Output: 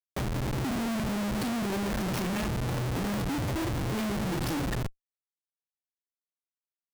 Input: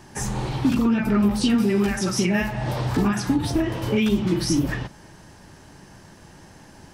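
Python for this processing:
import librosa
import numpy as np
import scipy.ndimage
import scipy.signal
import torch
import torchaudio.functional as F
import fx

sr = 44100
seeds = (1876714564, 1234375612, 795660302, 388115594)

y = fx.tracing_dist(x, sr, depth_ms=0.11)
y = fx.schmitt(y, sr, flips_db=-26.5)
y = y * 10.0 ** (-6.5 / 20.0)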